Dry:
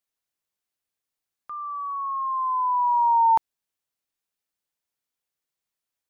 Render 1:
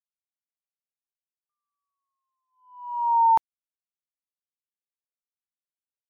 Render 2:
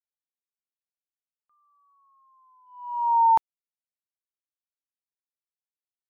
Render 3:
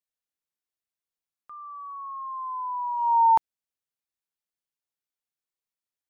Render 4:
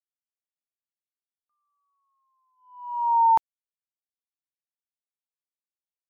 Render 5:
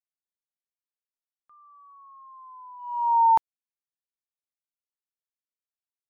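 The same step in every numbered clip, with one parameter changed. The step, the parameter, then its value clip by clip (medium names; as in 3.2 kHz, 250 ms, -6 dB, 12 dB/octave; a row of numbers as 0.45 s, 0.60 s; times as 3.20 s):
gate, range: -58 dB, -34 dB, -8 dB, -46 dB, -21 dB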